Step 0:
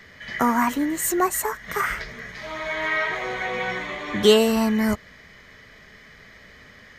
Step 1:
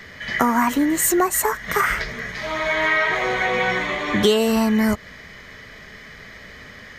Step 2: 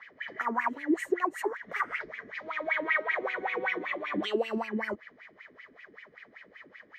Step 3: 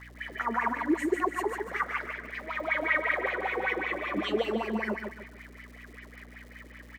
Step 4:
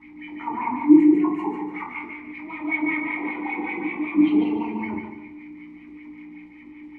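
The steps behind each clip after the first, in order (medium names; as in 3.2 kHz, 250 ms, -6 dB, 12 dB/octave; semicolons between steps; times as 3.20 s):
compression 4:1, threshold -22 dBFS, peak gain reduction 10.5 dB; trim +7 dB
wah-wah 5.2 Hz 280–2600 Hz, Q 5.9
hum 60 Hz, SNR 17 dB; on a send: feedback delay 146 ms, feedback 34%, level -5 dB; on the sum: crackle 320 per s -47 dBFS
octave divider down 1 oct, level -2 dB; vowel filter u; simulated room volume 280 m³, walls furnished, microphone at 2.7 m; trim +9 dB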